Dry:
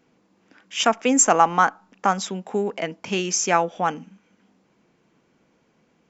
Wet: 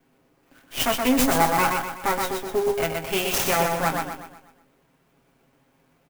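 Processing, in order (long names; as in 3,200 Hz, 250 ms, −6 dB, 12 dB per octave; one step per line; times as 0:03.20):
lower of the sound and its delayed copy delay 7.4 ms
brickwall limiter −11.5 dBFS, peak gain reduction 8 dB
double-tracking delay 24 ms −9.5 dB
on a send: repeating echo 123 ms, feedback 44%, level −4 dB
on the sum: converter with an unsteady clock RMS 0.037 ms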